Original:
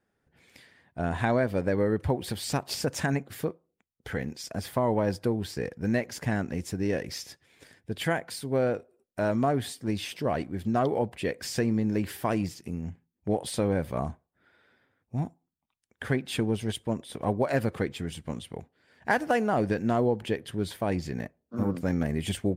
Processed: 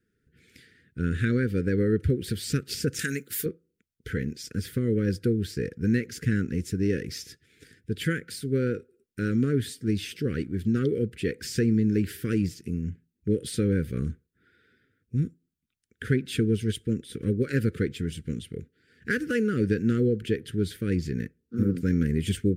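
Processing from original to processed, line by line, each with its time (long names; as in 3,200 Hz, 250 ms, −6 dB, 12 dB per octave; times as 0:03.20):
0:02.99–0:03.46: RIAA equalisation recording
whole clip: elliptic band-stop filter 460–1,400 Hz, stop band 40 dB; low-shelf EQ 450 Hz +5.5 dB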